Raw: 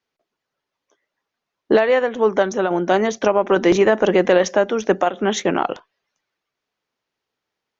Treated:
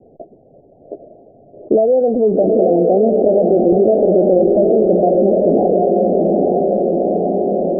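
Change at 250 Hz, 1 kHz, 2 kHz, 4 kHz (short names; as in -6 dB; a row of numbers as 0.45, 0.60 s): +7.0 dB, +1.5 dB, under -35 dB, under -40 dB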